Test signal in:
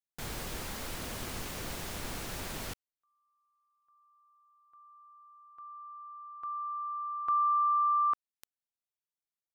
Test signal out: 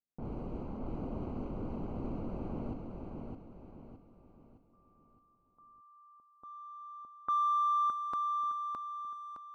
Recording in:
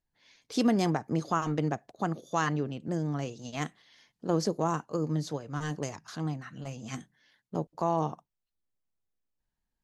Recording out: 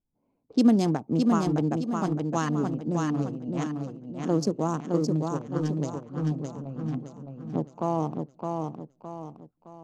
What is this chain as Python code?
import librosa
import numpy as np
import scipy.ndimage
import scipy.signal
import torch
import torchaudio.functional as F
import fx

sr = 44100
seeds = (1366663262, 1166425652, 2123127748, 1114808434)

p1 = fx.wiener(x, sr, points=25)
p2 = fx.env_lowpass(p1, sr, base_hz=1100.0, full_db=-26.0)
p3 = fx.graphic_eq(p2, sr, hz=(250, 2000, 8000), db=(7, -5, 5))
y = p3 + fx.echo_feedback(p3, sr, ms=614, feedback_pct=40, wet_db=-4.0, dry=0)